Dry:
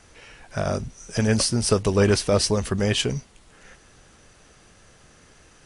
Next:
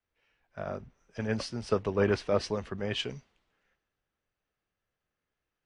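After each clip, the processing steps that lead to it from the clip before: LPF 2800 Hz 12 dB/oct; low shelf 200 Hz -7.5 dB; three-band expander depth 70%; gain -8.5 dB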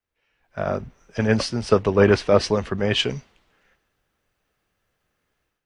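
AGC gain up to 12.5 dB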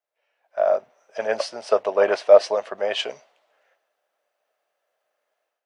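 resonant high-pass 620 Hz, resonance Q 4.9; gain -5 dB

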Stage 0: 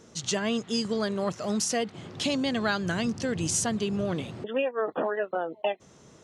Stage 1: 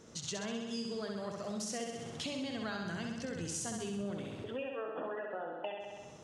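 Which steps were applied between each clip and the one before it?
flutter echo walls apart 11.1 m, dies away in 1 s; compressor 2.5:1, threshold -37 dBFS, peak gain reduction 11 dB; gain -4 dB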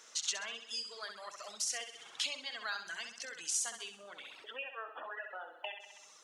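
reverb removal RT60 1.3 s; HPF 1300 Hz 12 dB/oct; gain +7 dB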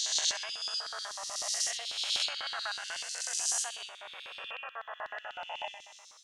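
spectral swells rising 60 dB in 2.06 s; LFO high-pass square 8.1 Hz 730–3900 Hz; gain -2.5 dB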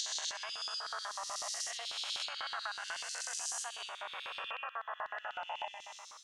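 bell 1100 Hz +8 dB 1.2 oct; compressor 3:1, threshold -40 dBFS, peak gain reduction 11.5 dB; gain +1 dB

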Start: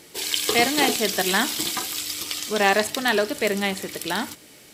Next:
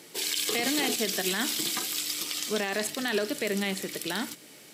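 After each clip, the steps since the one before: limiter -14 dBFS, peak gain reduction 11 dB; HPF 130 Hz 24 dB/oct; dynamic EQ 890 Hz, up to -6 dB, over -43 dBFS, Q 1.2; gain -2 dB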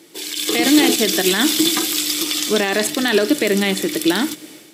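AGC gain up to 11 dB; small resonant body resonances 320/3500 Hz, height 14 dB, ringing for 90 ms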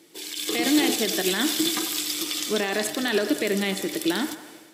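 band-limited delay 93 ms, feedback 60%, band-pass 900 Hz, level -9.5 dB; gain -7.5 dB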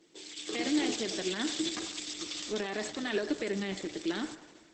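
gain -8 dB; Opus 12 kbps 48000 Hz

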